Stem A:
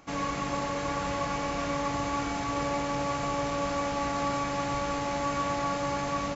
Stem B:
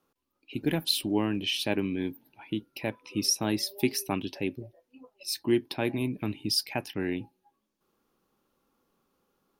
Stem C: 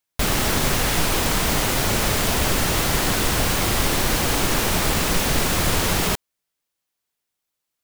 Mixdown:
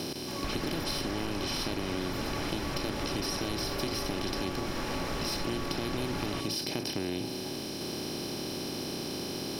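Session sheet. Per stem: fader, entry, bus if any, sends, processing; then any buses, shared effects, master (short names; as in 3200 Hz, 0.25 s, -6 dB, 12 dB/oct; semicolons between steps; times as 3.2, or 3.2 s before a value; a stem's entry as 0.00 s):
+1.0 dB, 0.20 s, no send, auto duck -10 dB, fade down 0.30 s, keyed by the second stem
-10.5 dB, 0.00 s, no send, per-bin compression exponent 0.2; low shelf 150 Hz +10 dB
-11.5 dB, 0.25 s, no send, LPF 3000 Hz 12 dB/oct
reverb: off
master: compressor, threshold -29 dBFS, peak gain reduction 7.5 dB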